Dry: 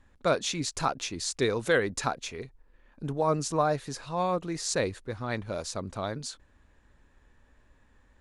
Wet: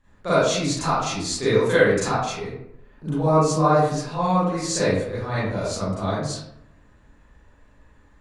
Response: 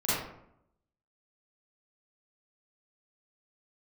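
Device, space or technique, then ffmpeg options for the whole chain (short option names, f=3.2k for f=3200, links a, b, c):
bathroom: -filter_complex "[1:a]atrim=start_sample=2205[a];[0:a][a]afir=irnorm=-1:irlink=0,volume=-3dB"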